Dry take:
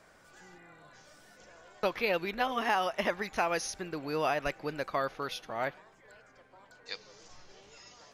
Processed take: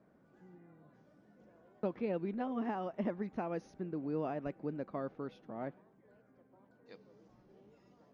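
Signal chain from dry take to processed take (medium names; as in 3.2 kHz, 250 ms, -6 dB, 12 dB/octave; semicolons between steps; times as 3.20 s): band-pass filter 220 Hz, Q 1.6; trim +4 dB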